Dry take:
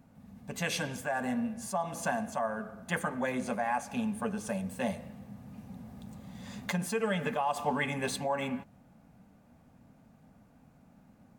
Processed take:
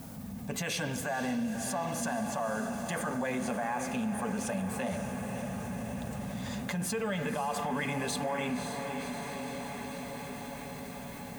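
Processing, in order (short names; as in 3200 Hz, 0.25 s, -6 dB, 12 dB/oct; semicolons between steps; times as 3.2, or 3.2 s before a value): limiter -26.5 dBFS, peak gain reduction 9.5 dB; added noise blue -67 dBFS; on a send: diffused feedback echo 0.54 s, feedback 68%, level -9.5 dB; on the sum: fast leveller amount 50%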